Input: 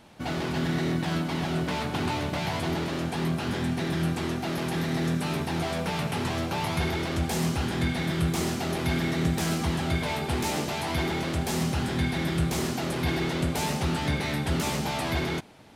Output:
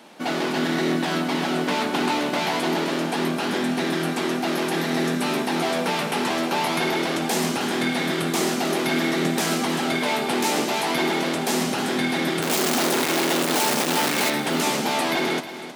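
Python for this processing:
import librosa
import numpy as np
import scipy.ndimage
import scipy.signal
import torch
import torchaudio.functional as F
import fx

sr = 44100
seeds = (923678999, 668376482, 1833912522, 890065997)

p1 = fx.clip_1bit(x, sr, at=(12.42, 14.3))
p2 = scipy.signal.sosfilt(scipy.signal.butter(4, 220.0, 'highpass', fs=sr, output='sos'), p1)
p3 = p2 + fx.echo_feedback(p2, sr, ms=316, feedback_pct=44, wet_db=-13, dry=0)
y = p3 * 10.0 ** (7.0 / 20.0)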